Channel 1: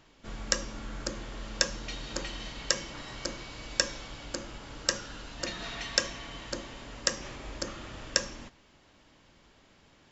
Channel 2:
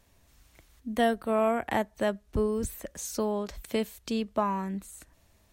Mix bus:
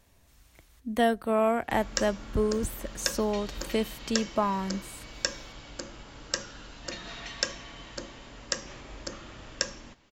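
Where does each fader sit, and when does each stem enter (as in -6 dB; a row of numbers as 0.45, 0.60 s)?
-2.5, +1.0 dB; 1.45, 0.00 s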